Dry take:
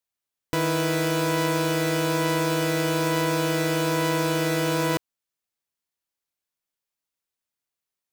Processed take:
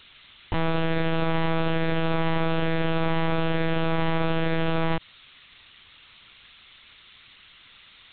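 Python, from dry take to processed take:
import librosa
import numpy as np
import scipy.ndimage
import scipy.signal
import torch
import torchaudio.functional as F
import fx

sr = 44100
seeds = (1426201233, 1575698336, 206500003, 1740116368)

y = x + 0.5 * 10.0 ** (-28.0 / 20.0) * np.diff(np.sign(x), prepend=np.sign(x[:1]))
y = fx.lpc_vocoder(y, sr, seeds[0], excitation='pitch_kept', order=8)
y = y * librosa.db_to_amplitude(1.0)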